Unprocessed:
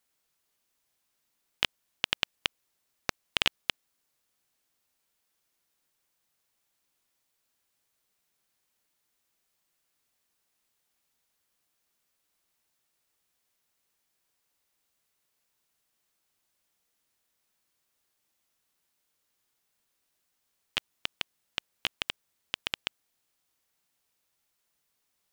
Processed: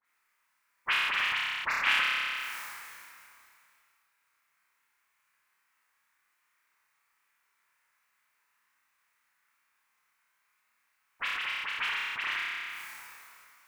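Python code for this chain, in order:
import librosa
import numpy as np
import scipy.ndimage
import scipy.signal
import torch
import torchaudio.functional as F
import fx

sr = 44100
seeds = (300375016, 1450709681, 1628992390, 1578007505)

y = fx.transient(x, sr, attack_db=-2, sustain_db=-7)
y = fx.band_shelf(y, sr, hz=1500.0, db=15.0, octaves=1.7)
y = fx.dispersion(y, sr, late='highs', ms=100.0, hz=2600.0)
y = fx.stretch_vocoder_free(y, sr, factor=0.54)
y = fx.low_shelf(y, sr, hz=440.0, db=-6.0)
y = fx.room_flutter(y, sr, wall_m=5.2, rt60_s=0.65)
y = fx.sustainer(y, sr, db_per_s=23.0)
y = y * 10.0 ** (-1.5 / 20.0)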